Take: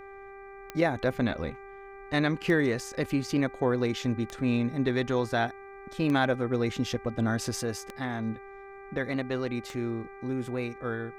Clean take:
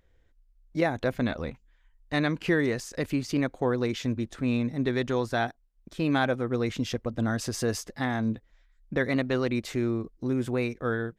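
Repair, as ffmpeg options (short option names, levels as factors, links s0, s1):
-af "adeclick=t=4,bandreject=f=394.1:t=h:w=4,bandreject=f=788.2:t=h:w=4,bandreject=f=1182.3:t=h:w=4,bandreject=f=1576.4:t=h:w=4,bandreject=f=1970.5:t=h:w=4,bandreject=f=2364.6:t=h:w=4,agate=range=0.0891:threshold=0.0126,asetnsamples=n=441:p=0,asendcmd='7.61 volume volume 4.5dB',volume=1"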